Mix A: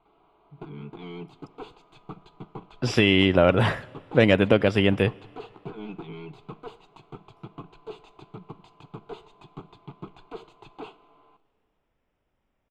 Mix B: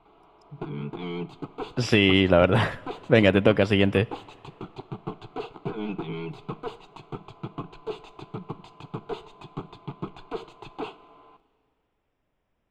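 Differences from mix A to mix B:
speech: entry -1.05 s; background +6.0 dB

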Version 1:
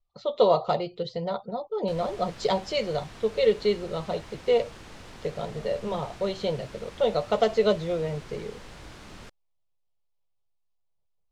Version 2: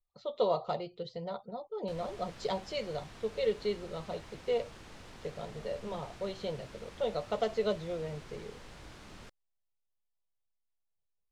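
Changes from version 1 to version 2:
speech -9.0 dB; background -5.5 dB

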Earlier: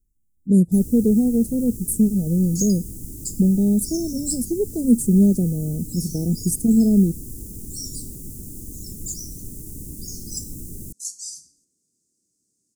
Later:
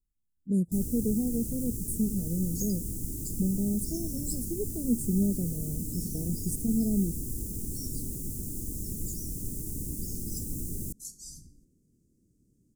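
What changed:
speech -11.5 dB; second sound: remove weighting filter ITU-R 468; master: add Butterworth band-stop 2800 Hz, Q 5.4

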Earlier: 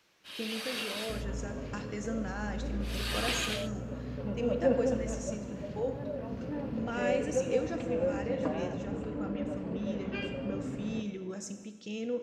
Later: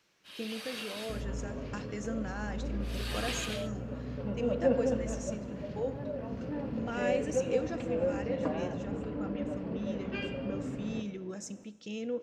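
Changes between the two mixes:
speech: send -8.5 dB; first sound -4.5 dB

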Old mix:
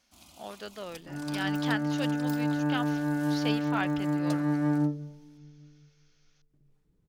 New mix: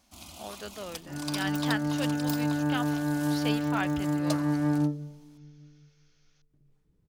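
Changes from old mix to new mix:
first sound +8.0 dB; master: add bell 84 Hz +3.5 dB 1 oct

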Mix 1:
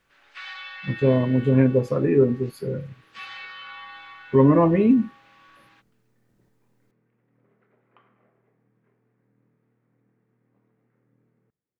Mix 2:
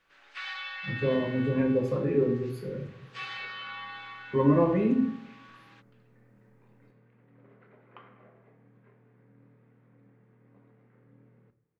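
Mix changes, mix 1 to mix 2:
speech -11.0 dB; second sound +6.5 dB; reverb: on, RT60 0.65 s

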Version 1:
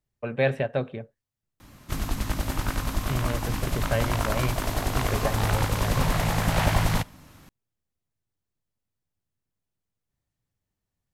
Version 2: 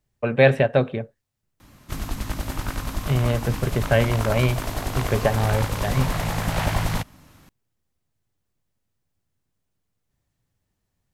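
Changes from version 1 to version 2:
speech +8.0 dB; reverb: off

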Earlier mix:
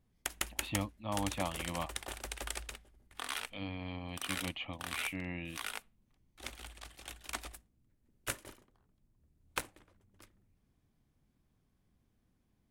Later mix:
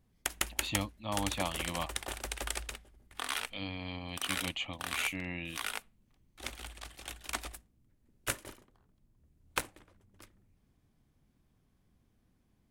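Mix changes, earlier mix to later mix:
speech: remove air absorption 300 m; background +3.5 dB

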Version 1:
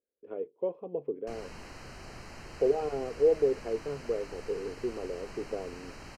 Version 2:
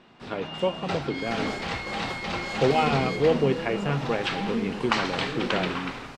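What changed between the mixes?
speech: remove band-pass 440 Hz, Q 3.8; first sound: unmuted

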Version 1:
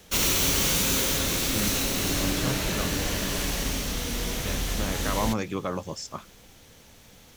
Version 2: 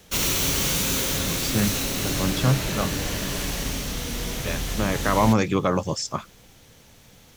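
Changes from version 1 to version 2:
speech +8.0 dB; master: add bell 130 Hz +4.5 dB 0.56 oct

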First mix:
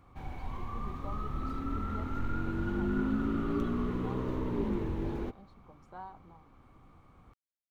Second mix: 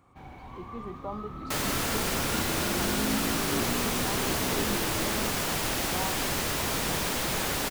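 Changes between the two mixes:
speech +9.5 dB; first sound: add HPF 130 Hz 6 dB/oct; second sound: unmuted

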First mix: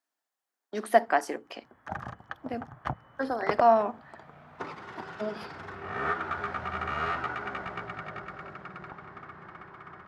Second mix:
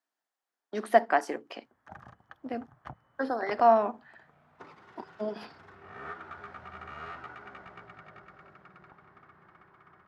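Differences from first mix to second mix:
speech: add high shelf 7200 Hz -8.5 dB; background -11.5 dB

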